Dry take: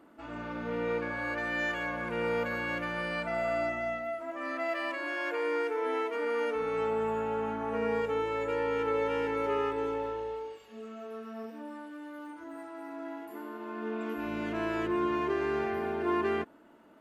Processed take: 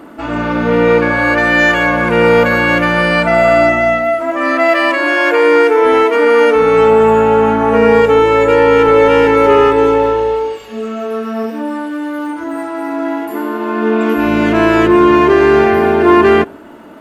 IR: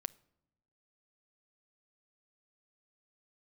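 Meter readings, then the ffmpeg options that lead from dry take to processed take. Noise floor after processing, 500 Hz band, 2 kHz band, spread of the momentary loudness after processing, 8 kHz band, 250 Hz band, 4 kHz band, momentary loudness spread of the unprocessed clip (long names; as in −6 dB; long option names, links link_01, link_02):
−31 dBFS, +22.0 dB, +21.5 dB, 12 LU, can't be measured, +22.5 dB, +21.5 dB, 13 LU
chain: -filter_complex "[0:a]asplit=2[link_01][link_02];[1:a]atrim=start_sample=2205,lowshelf=frequency=420:gain=3[link_03];[link_02][link_03]afir=irnorm=-1:irlink=0,volume=-0.5dB[link_04];[link_01][link_04]amix=inputs=2:normalize=0,acontrast=71,apsyclip=11.5dB,volume=-1.5dB"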